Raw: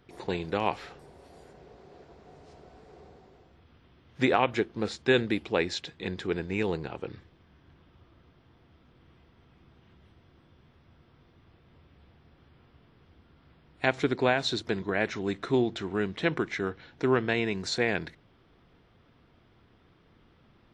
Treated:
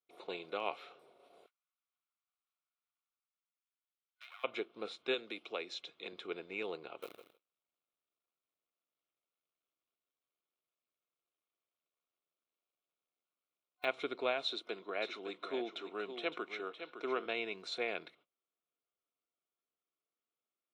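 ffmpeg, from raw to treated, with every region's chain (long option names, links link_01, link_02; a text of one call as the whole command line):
ffmpeg -i in.wav -filter_complex "[0:a]asettb=1/sr,asplit=3[link_01][link_02][link_03];[link_01]atrim=end=1.464[link_04];[link_02]atrim=start=1.46:end=4.44,asetpts=PTS-STARTPTS,afade=type=in:duration=0.004:curve=qsin,afade=type=out:start_time=2.976:duration=0.004:curve=qsin,acompressor=threshold=-29dB:ratio=6:attack=3.2:release=140:knee=1:detection=peak,aeval=exprs='max(val(0),0)':channel_layout=same,highpass=frequency=1200:width=0.5412,highpass=frequency=1200:width=1.3066[link_05];[link_03]atrim=start=4.436[link_06];[link_04][link_05]acrossfade=duration=0.004:curve1=hsin:curve2=qsin[link_07];[link_07][link_06]acrossfade=duration=0.004:curve1=qsin:curve2=hsin,asettb=1/sr,asplit=3[link_08][link_09][link_10];[link_08]atrim=end=5.144[link_11];[link_09]atrim=start=5.14:end=6.13,asetpts=PTS-STARTPTS,afade=type=in:duration=0.004:curve=qsin,afade=type=out:start_time=0.986:duration=0.004:curve=qsin,equalizer=frequency=6200:width_type=o:width=0.73:gain=7,acrossover=split=80|160|810[link_12][link_13][link_14][link_15];[link_12]acompressor=threshold=-59dB:ratio=3[link_16];[link_13]acompressor=threshold=-53dB:ratio=3[link_17];[link_14]acompressor=threshold=-31dB:ratio=3[link_18];[link_15]acompressor=threshold=-33dB:ratio=3[link_19];[link_16][link_17][link_18][link_19]amix=inputs=4:normalize=0[link_20];[link_10]atrim=start=6.126[link_21];[link_11][link_20]acrossfade=duration=0.004:curve1=hsin:curve2=qsin[link_22];[link_22][link_21]acrossfade=duration=0.004:curve1=qsin:curve2=hsin,asettb=1/sr,asplit=3[link_23][link_24][link_25];[link_23]atrim=end=7.024[link_26];[link_24]atrim=start=7.02:end=13.85,asetpts=PTS-STARTPTS,afade=type=in:duration=0.004:curve=qsin,afade=type=out:start_time=6.826:duration=0.004:curve=qsin,acrusher=bits=7:dc=4:mix=0:aa=0.000001,aecho=1:1:155|310|465:0.282|0.0648|0.0149,atrim=end_sample=301203[link_27];[link_25]atrim=start=13.846[link_28];[link_26][link_27]acrossfade=duration=0.004:curve1=hsin:curve2=qsin[link_29];[link_29][link_28]acrossfade=duration=0.004:curve1=qsin:curve2=hsin,asettb=1/sr,asplit=3[link_30][link_31][link_32];[link_30]atrim=end=14.464[link_33];[link_31]atrim=start=14.46:end=17.26,asetpts=PTS-STARTPTS,afade=type=in:duration=0.004:curve=qsin,afade=type=out:start_time=2.796:duration=0.004:curve=qsin,highpass=200,aecho=1:1:561:0.335,atrim=end_sample=123480[link_34];[link_32]atrim=start=17.256[link_35];[link_33][link_34]acrossfade=duration=0.004:curve1=hsin:curve2=qsin[link_36];[link_36][link_35]acrossfade=duration=0.004:curve1=qsin:curve2=hsin,highpass=510,agate=range=-25dB:threshold=-57dB:ratio=16:detection=peak,superequalizer=9b=0.501:11b=0.282:14b=0.316:15b=0.251:16b=0.501,volume=-6dB" out.wav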